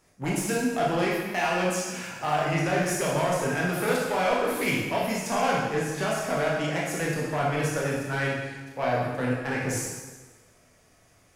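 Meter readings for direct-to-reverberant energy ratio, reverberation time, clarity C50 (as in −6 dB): −5.0 dB, 1.3 s, 0.0 dB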